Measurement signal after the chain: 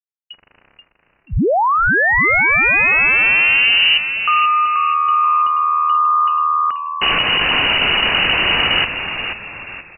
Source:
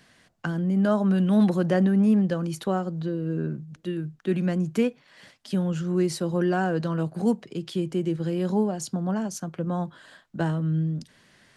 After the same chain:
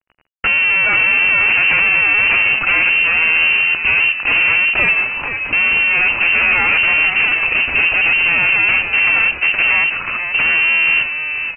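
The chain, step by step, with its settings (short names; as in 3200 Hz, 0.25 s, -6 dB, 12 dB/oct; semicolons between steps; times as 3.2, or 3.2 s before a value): de-hum 124.8 Hz, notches 3; fuzz box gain 46 dB, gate -49 dBFS; inverted band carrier 2900 Hz; on a send: frequency-shifting echo 0.482 s, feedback 39%, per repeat -78 Hz, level -8 dB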